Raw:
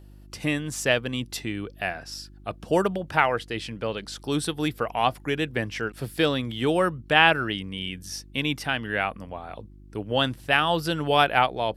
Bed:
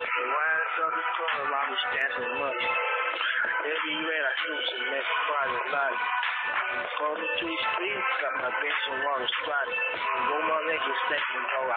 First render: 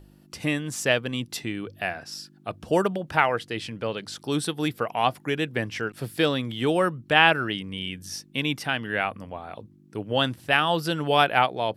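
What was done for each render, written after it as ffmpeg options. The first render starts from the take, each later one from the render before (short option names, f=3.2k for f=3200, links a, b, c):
-af "bandreject=f=50:t=h:w=4,bandreject=f=100:t=h:w=4"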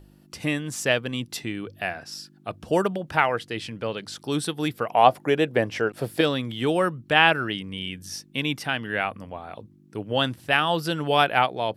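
-filter_complex "[0:a]asettb=1/sr,asplit=3[a][b][c];[a]atrim=end=4.914[d];[b]atrim=start=4.91:end=6.21,asetpts=PTS-STARTPTS,afade=t=in:d=0.004:c=qsin,afade=t=out:st=1.296:d=0.004:c=qsin,equalizer=f=590:t=o:w=1.5:g=10[e];[c]atrim=start=6.206[f];[d][e]acrossfade=d=0.004:c1=hsin:c2=qsin[g];[g][f]acrossfade=d=0.004:c1=qsin:c2=hsin"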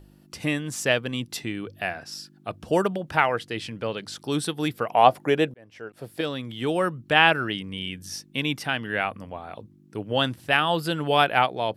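-filter_complex "[0:a]asettb=1/sr,asplit=3[a][b][c];[a]atrim=end=10.574[d];[b]atrim=start=10.57:end=11.23,asetpts=PTS-STARTPTS,afade=t=in:d=0.004:c=qsin,afade=t=out:st=0.656:d=0.004:c=qsin,bandreject=f=5.7k:w=5.4[e];[c]atrim=start=11.226[f];[d][e]acrossfade=d=0.004:c1=hsin:c2=qsin[g];[g][f]acrossfade=d=0.004:c1=qsin:c2=hsin,asplit=2[h][i];[h]atrim=end=5.54,asetpts=PTS-STARTPTS,afade=t=out:st=5.536:d=0.004:c=hsin[j];[i]atrim=start=5.54,asetpts=PTS-STARTPTS,afade=t=in:d=1.51[k];[j][k]concat=n=2:v=0:a=1"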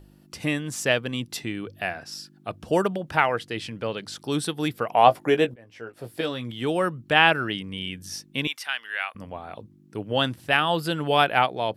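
-filter_complex "[0:a]asettb=1/sr,asplit=3[a][b][c];[a]atrim=end=5.054[d];[b]atrim=start=5.05:end=6.51,asetpts=PTS-STARTPTS,afade=t=in:d=0.004:c=qsin,afade=t=out:st=1.456:d=0.004:c=qsin,asplit=2[e][f];[f]adelay=17,volume=-8dB[g];[e][g]amix=inputs=2:normalize=0,atrim=end_sample=64386[h];[c]atrim=start=6.506[i];[d][h]acrossfade=d=0.004:c1=hsin:c2=qsin[j];[j][i]acrossfade=d=0.004:c1=qsin:c2=hsin,asettb=1/sr,asplit=3[k][l][m];[k]atrim=end=8.474[n];[l]atrim=start=8.47:end=9.15,asetpts=PTS-STARTPTS,afade=t=in:d=0.004:c=qsin,afade=t=out:st=0.676:d=0.004:c=qsin,highpass=1.3k[o];[m]atrim=start=9.146[p];[n][o]acrossfade=d=0.004:c1=hsin:c2=qsin[q];[q][p]acrossfade=d=0.004:c1=qsin:c2=hsin"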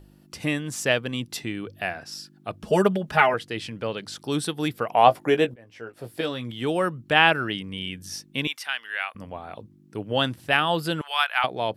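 -filter_complex "[0:a]asettb=1/sr,asplit=3[a][b][c];[a]atrim=end=2.634[d];[b]atrim=start=2.63:end=3.34,asetpts=PTS-STARTPTS,afade=t=in:d=0.004:c=qsin,afade=t=out:st=0.706:d=0.004:c=qsin,aecho=1:1:4.8:0.94,atrim=end_sample=31311[e];[c]atrim=start=3.336[f];[d][e]acrossfade=d=0.004:c1=hsin:c2=qsin[g];[g][f]acrossfade=d=0.004:c1=qsin:c2=hsin,asettb=1/sr,asplit=3[h][i][j];[h]atrim=end=11.014[k];[i]atrim=start=11.01:end=11.44,asetpts=PTS-STARTPTS,afade=t=in:d=0.004:c=qsin,afade=t=out:st=0.426:d=0.004:c=qsin,highpass=f=1k:w=0.5412,highpass=f=1k:w=1.3066[l];[j]atrim=start=11.436[m];[k][l]acrossfade=d=0.004:c1=hsin:c2=qsin[n];[n][m]acrossfade=d=0.004:c1=qsin:c2=hsin"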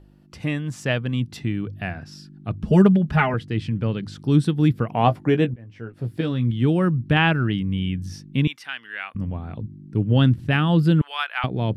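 -af "asubboost=boost=10.5:cutoff=210,lowpass=f=2.5k:p=1"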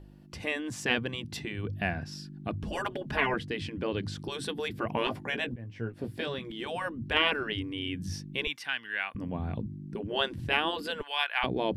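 -af "afftfilt=real='re*lt(hypot(re,im),0.316)':imag='im*lt(hypot(re,im),0.316)':win_size=1024:overlap=0.75,bandreject=f=1.3k:w=8.2"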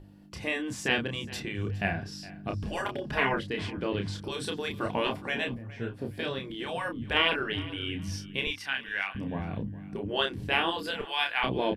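-filter_complex "[0:a]asplit=2[a][b];[b]adelay=30,volume=-5dB[c];[a][c]amix=inputs=2:normalize=0,aecho=1:1:414|828:0.119|0.0321"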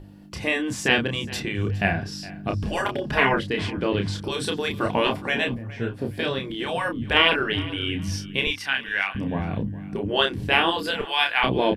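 -af "volume=7dB"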